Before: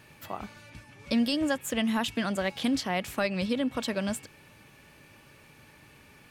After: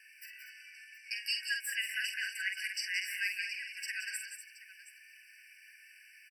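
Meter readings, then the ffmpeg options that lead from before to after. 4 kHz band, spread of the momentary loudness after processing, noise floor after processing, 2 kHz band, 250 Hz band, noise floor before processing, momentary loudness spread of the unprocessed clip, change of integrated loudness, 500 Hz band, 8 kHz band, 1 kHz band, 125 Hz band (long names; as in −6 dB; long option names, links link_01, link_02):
−2.5 dB, 21 LU, −59 dBFS, +2.0 dB, below −40 dB, −56 dBFS, 14 LU, −5.5 dB, below −40 dB, −1.5 dB, below −35 dB, below −40 dB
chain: -af "aecho=1:1:47|170|185|243|723:0.501|0.316|0.335|0.316|0.158,afftfilt=real='re*eq(mod(floor(b*sr/1024/1500),2),1)':imag='im*eq(mod(floor(b*sr/1024/1500),2),1)':win_size=1024:overlap=0.75"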